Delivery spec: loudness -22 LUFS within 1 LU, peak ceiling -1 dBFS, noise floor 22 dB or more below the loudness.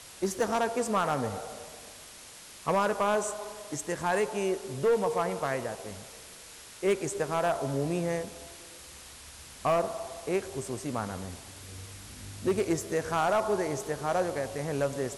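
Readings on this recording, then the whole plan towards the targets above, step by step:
clipped 0.9%; flat tops at -20.0 dBFS; noise floor -49 dBFS; noise floor target -53 dBFS; loudness -30.5 LUFS; peak -20.0 dBFS; loudness target -22.0 LUFS
-> clip repair -20 dBFS; denoiser 6 dB, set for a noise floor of -49 dBFS; gain +8.5 dB

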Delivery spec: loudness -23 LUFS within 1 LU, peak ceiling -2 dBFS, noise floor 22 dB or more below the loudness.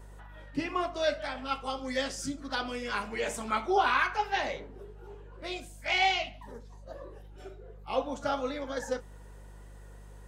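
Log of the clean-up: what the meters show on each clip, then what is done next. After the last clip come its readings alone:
hum 50 Hz; harmonics up to 200 Hz; hum level -46 dBFS; loudness -31.5 LUFS; peak -13.5 dBFS; loudness target -23.0 LUFS
-> de-hum 50 Hz, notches 4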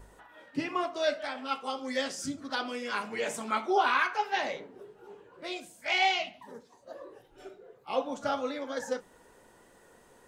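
hum none; loudness -31.5 LUFS; peak -13.0 dBFS; loudness target -23.0 LUFS
-> gain +8.5 dB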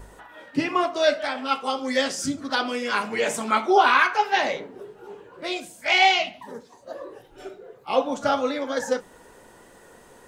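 loudness -23.0 LUFS; peak -4.5 dBFS; noise floor -51 dBFS

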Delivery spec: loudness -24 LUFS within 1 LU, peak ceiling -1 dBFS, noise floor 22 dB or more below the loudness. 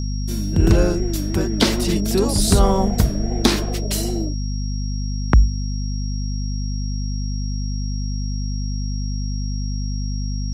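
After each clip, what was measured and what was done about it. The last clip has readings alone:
hum 50 Hz; harmonics up to 250 Hz; hum level -22 dBFS; steady tone 5600 Hz; tone level -36 dBFS; loudness -22.0 LUFS; peak -2.0 dBFS; loudness target -24.0 LUFS
-> notches 50/100/150/200/250 Hz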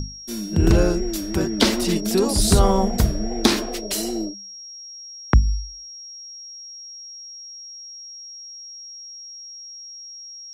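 hum none; steady tone 5600 Hz; tone level -36 dBFS
-> notch 5600 Hz, Q 30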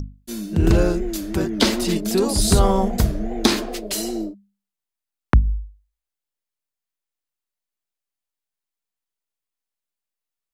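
steady tone none; loudness -21.0 LUFS; peak -3.0 dBFS; loudness target -24.0 LUFS
-> gain -3 dB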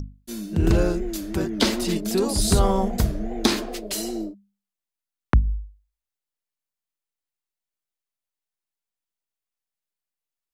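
loudness -24.0 LUFS; peak -6.0 dBFS; noise floor -89 dBFS

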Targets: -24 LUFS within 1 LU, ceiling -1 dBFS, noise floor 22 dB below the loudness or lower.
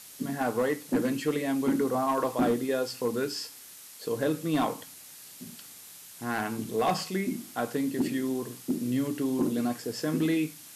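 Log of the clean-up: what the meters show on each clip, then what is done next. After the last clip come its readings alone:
clipped 0.7%; flat tops at -19.5 dBFS; noise floor -48 dBFS; noise floor target -52 dBFS; loudness -29.5 LUFS; peak -19.5 dBFS; loudness target -24.0 LUFS
-> clip repair -19.5 dBFS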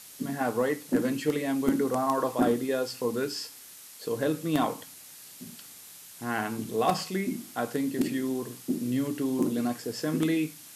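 clipped 0.0%; noise floor -48 dBFS; noise floor target -52 dBFS
-> denoiser 6 dB, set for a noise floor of -48 dBFS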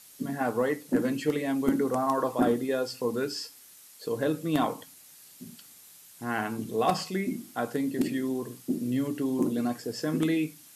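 noise floor -53 dBFS; loudness -29.5 LUFS; peak -10.5 dBFS; loudness target -24.0 LUFS
-> gain +5.5 dB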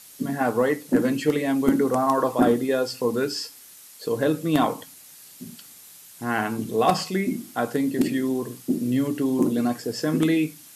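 loudness -24.0 LUFS; peak -5.0 dBFS; noise floor -47 dBFS

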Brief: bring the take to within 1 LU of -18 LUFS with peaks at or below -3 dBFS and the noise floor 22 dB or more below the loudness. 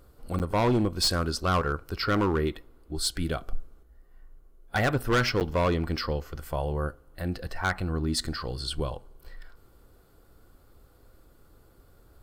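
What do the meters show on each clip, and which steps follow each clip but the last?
clipped 1.2%; flat tops at -19.0 dBFS; dropouts 2; longest dropout 9.1 ms; loudness -28.5 LUFS; peak -19.0 dBFS; loudness target -18.0 LUFS
-> clip repair -19 dBFS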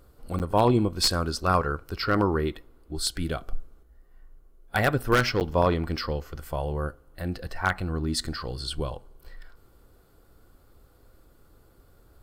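clipped 0.0%; dropouts 2; longest dropout 9.1 ms
-> interpolate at 0.39/5.4, 9.1 ms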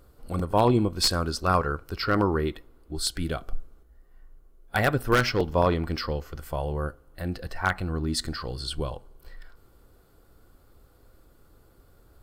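dropouts 0; loudness -27.0 LUFS; peak -10.0 dBFS; loudness target -18.0 LUFS
-> gain +9 dB; limiter -3 dBFS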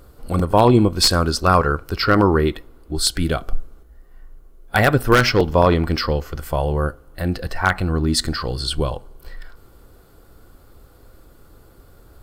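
loudness -18.5 LUFS; peak -3.0 dBFS; noise floor -50 dBFS

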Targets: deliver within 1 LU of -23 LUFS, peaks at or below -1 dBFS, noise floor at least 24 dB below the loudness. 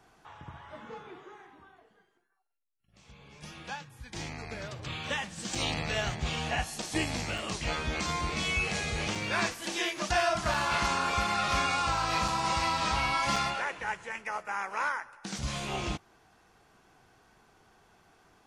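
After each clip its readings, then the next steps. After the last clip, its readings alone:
dropouts 7; longest dropout 3.7 ms; loudness -31.0 LUFS; peak -15.0 dBFS; loudness target -23.0 LUFS
-> interpolate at 5.55/6.82/7.38/9.15/10.54/12.28/13.36, 3.7 ms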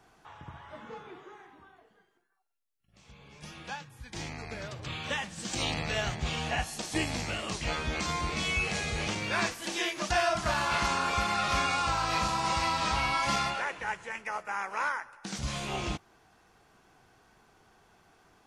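dropouts 0; loudness -31.0 LUFS; peak -15.0 dBFS; loudness target -23.0 LUFS
-> gain +8 dB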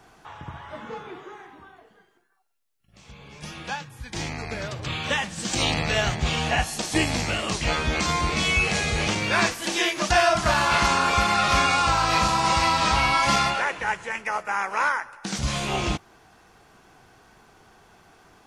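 loudness -23.0 LUFS; peak -7.0 dBFS; noise floor -59 dBFS

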